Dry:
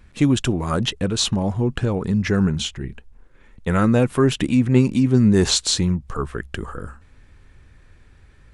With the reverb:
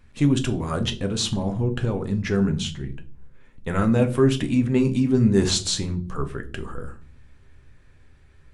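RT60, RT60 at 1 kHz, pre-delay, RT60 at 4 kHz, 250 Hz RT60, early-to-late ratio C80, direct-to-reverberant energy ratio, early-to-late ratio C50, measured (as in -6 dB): 0.40 s, 0.35 s, 7 ms, 0.35 s, 0.85 s, 21.5 dB, 6.0 dB, 16.0 dB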